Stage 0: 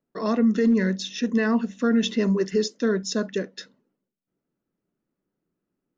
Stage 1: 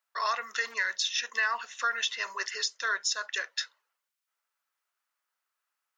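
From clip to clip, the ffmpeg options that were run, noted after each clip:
-af "highpass=f=1k:w=0.5412,highpass=f=1k:w=1.3066,alimiter=level_in=2dB:limit=-24dB:level=0:latency=1:release=306,volume=-2dB,volume=8dB"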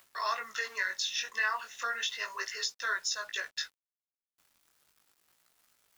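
-af "acompressor=mode=upward:threshold=-41dB:ratio=2.5,acrusher=bits=8:mix=0:aa=0.000001,flanger=delay=16.5:depth=6.7:speed=0.35"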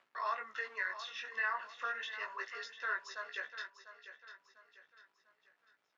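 -filter_complex "[0:a]highpass=200,lowpass=2.3k,asplit=2[a][b];[b]aecho=0:1:697|1394|2091|2788:0.251|0.098|0.0382|0.0149[c];[a][c]amix=inputs=2:normalize=0,volume=-3.5dB"

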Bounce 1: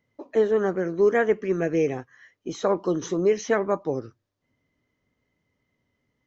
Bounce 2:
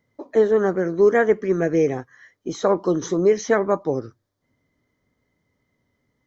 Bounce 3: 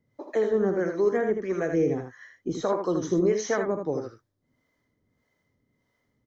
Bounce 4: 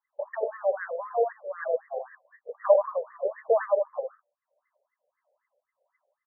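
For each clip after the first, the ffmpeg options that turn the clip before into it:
-af "equalizer=f=2.7k:t=o:w=0.27:g=-12,volume=4dB"
-filter_complex "[0:a]alimiter=limit=-12dB:level=0:latency=1:release=380,acrossover=split=450[a][b];[a]aeval=exprs='val(0)*(1-0.7/2+0.7/2*cos(2*PI*1.6*n/s))':c=same[c];[b]aeval=exprs='val(0)*(1-0.7/2-0.7/2*cos(2*PI*1.6*n/s))':c=same[d];[c][d]amix=inputs=2:normalize=0,aecho=1:1:46|79:0.178|0.501"
-af "highpass=430,equalizer=f=580:t=q:w=4:g=8,equalizer=f=890:t=q:w=4:g=-5,equalizer=f=1.4k:t=q:w=4:g=-6,lowpass=f=2.2k:w=0.5412,lowpass=f=2.2k:w=1.3066,afftfilt=real='re*between(b*sr/1024,600*pow(1500/600,0.5+0.5*sin(2*PI*3.9*pts/sr))/1.41,600*pow(1500/600,0.5+0.5*sin(2*PI*3.9*pts/sr))*1.41)':imag='im*between(b*sr/1024,600*pow(1500/600,0.5+0.5*sin(2*PI*3.9*pts/sr))/1.41,600*pow(1500/600,0.5+0.5*sin(2*PI*3.9*pts/sr))*1.41)':win_size=1024:overlap=0.75,volume=6.5dB"

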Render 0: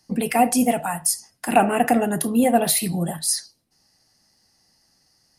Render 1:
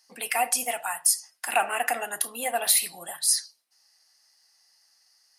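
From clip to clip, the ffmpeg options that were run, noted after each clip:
-af "highpass=1.1k"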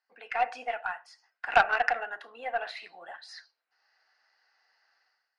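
-af "dynaudnorm=f=100:g=7:m=15dB,highpass=360,equalizer=f=460:t=q:w=4:g=4,equalizer=f=730:t=q:w=4:g=4,equalizer=f=1.5k:t=q:w=4:g=10,equalizer=f=3.3k:t=q:w=4:g=-6,lowpass=f=3.4k:w=0.5412,lowpass=f=3.4k:w=1.3066,aeval=exprs='1.19*(cos(1*acos(clip(val(0)/1.19,-1,1)))-cos(1*PI/2))+0.188*(cos(3*acos(clip(val(0)/1.19,-1,1)))-cos(3*PI/2))+0.0075*(cos(8*acos(clip(val(0)/1.19,-1,1)))-cos(8*PI/2))':c=same,volume=-8dB"

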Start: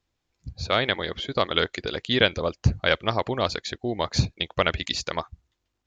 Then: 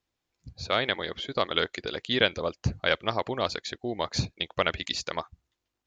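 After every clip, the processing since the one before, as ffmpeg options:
-af "lowshelf=f=120:g=-8,volume=-3dB"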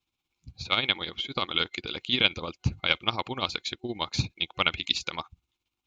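-af "superequalizer=7b=0.501:8b=0.398:11b=0.447:12b=2:13b=1.78,tremolo=f=17:d=0.58,volume=1.5dB"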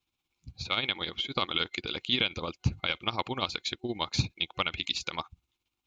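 -af "alimiter=limit=-13dB:level=0:latency=1:release=112"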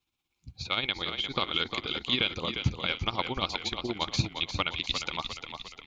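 -filter_complex "[0:a]asplit=7[a][b][c][d][e][f][g];[b]adelay=352,afreqshift=-34,volume=-7.5dB[h];[c]adelay=704,afreqshift=-68,volume=-13.3dB[i];[d]adelay=1056,afreqshift=-102,volume=-19.2dB[j];[e]adelay=1408,afreqshift=-136,volume=-25dB[k];[f]adelay=1760,afreqshift=-170,volume=-30.9dB[l];[g]adelay=2112,afreqshift=-204,volume=-36.7dB[m];[a][h][i][j][k][l][m]amix=inputs=7:normalize=0"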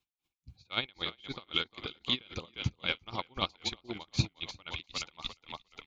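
-af "aeval=exprs='val(0)*pow(10,-30*(0.5-0.5*cos(2*PI*3.8*n/s))/20)':c=same"

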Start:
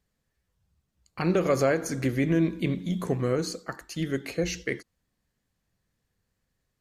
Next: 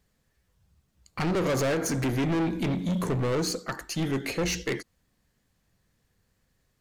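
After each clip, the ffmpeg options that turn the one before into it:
-af "asoftclip=type=tanh:threshold=-30.5dB,aeval=exprs='0.0299*(cos(1*acos(clip(val(0)/0.0299,-1,1)))-cos(1*PI/2))+0.000211*(cos(7*acos(clip(val(0)/0.0299,-1,1)))-cos(7*PI/2))+0.000531*(cos(8*acos(clip(val(0)/0.0299,-1,1)))-cos(8*PI/2))':c=same,volume=7dB"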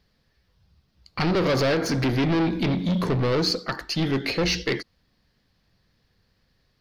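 -af "highshelf=f=6k:t=q:w=3:g=-8,volume=4dB"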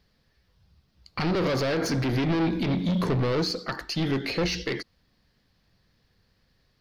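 -af "alimiter=limit=-20.5dB:level=0:latency=1:release=97"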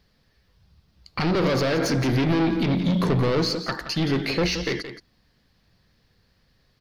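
-af "aecho=1:1:173:0.282,volume=3dB"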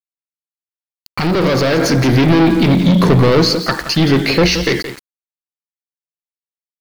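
-af "dynaudnorm=f=370:g=9:m=6dB,aeval=exprs='val(0)*gte(abs(val(0)),0.0211)':c=same,volume=5dB"

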